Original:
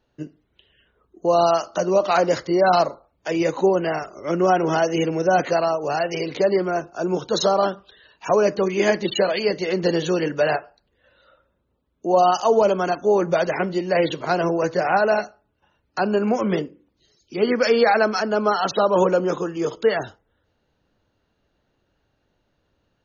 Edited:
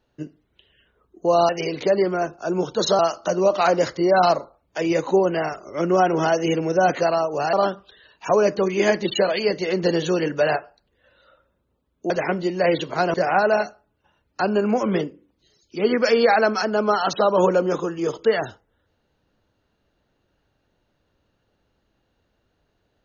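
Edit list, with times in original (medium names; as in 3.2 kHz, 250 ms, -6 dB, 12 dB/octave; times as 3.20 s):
6.03–7.53 s: move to 1.49 s
12.10–13.41 s: delete
14.45–14.72 s: delete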